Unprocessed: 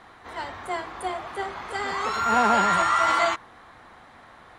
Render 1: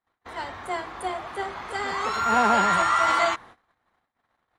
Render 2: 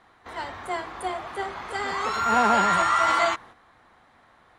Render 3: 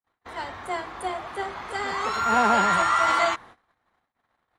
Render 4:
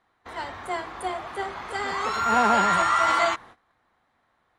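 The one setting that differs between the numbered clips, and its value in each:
noise gate, range: −37, −8, −50, −20 decibels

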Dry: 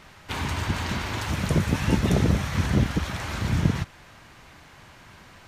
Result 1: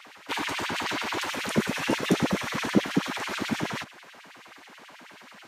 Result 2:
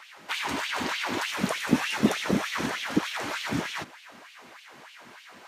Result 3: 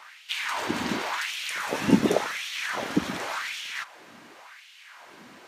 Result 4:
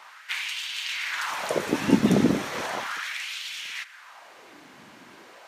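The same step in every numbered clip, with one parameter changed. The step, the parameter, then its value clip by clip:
auto-filter high-pass, speed: 9.3, 3.3, 0.9, 0.36 Hertz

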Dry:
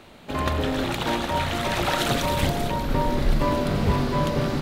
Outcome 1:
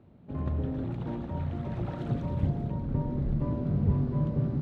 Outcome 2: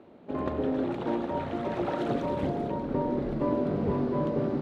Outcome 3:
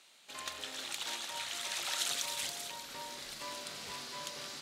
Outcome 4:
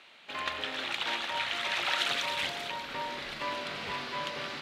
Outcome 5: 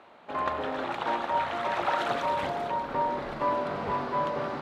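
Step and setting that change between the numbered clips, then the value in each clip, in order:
resonant band-pass, frequency: 120, 350, 7,300, 2,700, 960 Hertz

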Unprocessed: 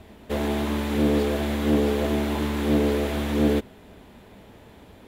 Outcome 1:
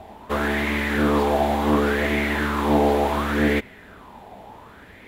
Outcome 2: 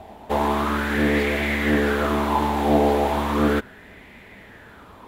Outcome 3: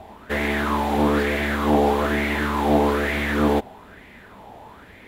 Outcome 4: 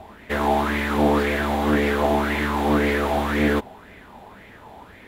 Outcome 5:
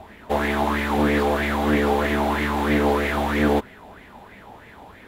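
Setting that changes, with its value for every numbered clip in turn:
auto-filter bell, speed: 0.69, 0.36, 1.1, 1.9, 3.1 Hertz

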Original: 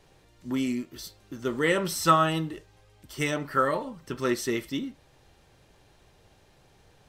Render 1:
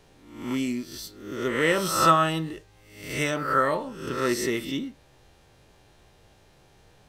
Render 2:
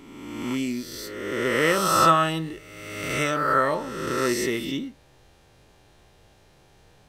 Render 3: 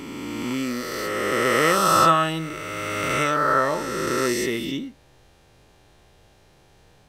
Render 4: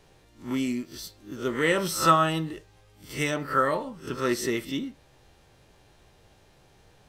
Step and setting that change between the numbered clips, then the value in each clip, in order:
peak hold with a rise ahead of every peak, rising 60 dB in: 0.68, 1.51, 3.16, 0.31 seconds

